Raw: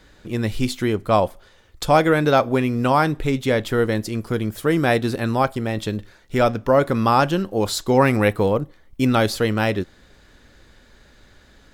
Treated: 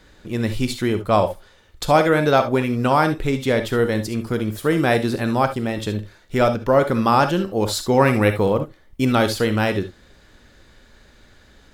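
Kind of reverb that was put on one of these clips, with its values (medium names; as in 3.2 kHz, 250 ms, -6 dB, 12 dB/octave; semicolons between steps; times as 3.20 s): gated-style reverb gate 90 ms rising, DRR 8.5 dB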